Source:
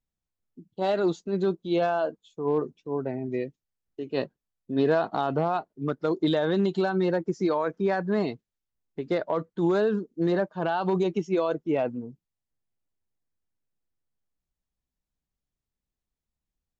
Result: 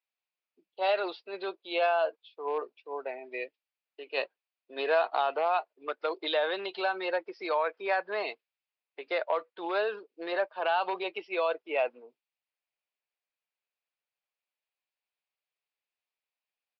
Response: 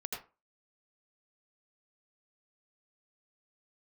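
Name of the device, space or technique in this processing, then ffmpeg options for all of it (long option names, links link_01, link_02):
musical greeting card: -af "aresample=11025,aresample=44100,highpass=frequency=530:width=0.5412,highpass=frequency=530:width=1.3066,equalizer=frequency=2500:width_type=o:width=0.48:gain=10"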